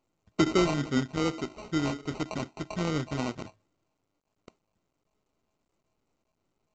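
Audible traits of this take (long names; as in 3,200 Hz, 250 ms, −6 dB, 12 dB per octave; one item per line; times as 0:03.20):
a buzz of ramps at a fixed pitch in blocks of 16 samples
phaser sweep stages 6, 2.5 Hz, lowest notch 450–4,300 Hz
aliases and images of a low sample rate 1,700 Hz, jitter 0%
mu-law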